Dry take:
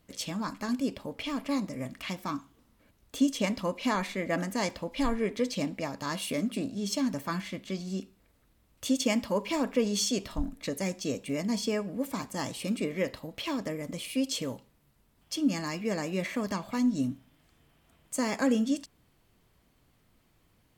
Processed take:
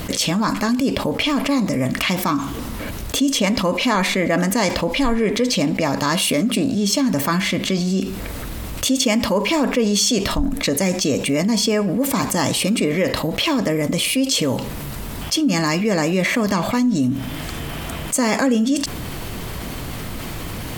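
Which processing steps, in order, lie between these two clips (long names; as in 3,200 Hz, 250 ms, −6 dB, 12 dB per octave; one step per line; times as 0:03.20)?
envelope flattener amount 70%
level +5 dB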